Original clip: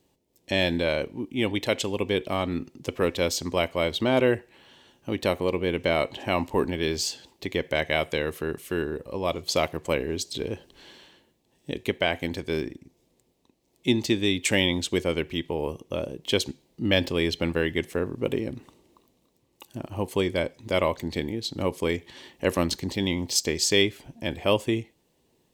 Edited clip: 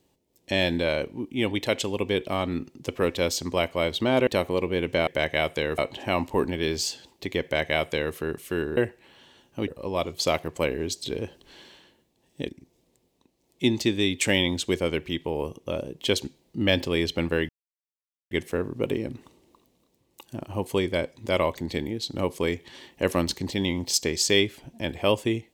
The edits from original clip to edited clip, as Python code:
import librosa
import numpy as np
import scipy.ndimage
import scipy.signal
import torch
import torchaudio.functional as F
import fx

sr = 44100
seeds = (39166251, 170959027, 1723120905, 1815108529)

y = fx.edit(x, sr, fx.move(start_s=4.27, length_s=0.91, to_s=8.97),
    fx.duplicate(start_s=7.63, length_s=0.71, to_s=5.98),
    fx.cut(start_s=11.78, length_s=0.95),
    fx.insert_silence(at_s=17.73, length_s=0.82), tone=tone)